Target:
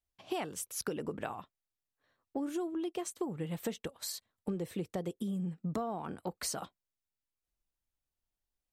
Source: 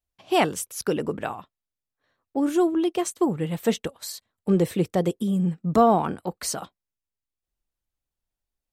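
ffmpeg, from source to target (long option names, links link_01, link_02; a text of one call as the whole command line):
ffmpeg -i in.wav -af "acompressor=threshold=-29dB:ratio=10,volume=-4dB" out.wav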